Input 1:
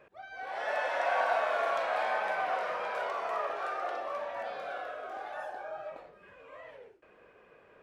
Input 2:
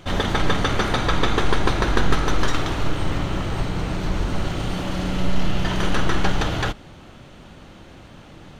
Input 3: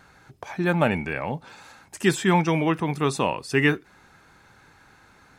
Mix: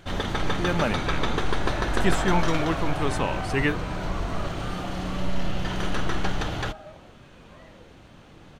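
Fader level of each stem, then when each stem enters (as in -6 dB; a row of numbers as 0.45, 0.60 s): -3.5, -6.0, -4.5 dB; 1.00, 0.00, 0.00 s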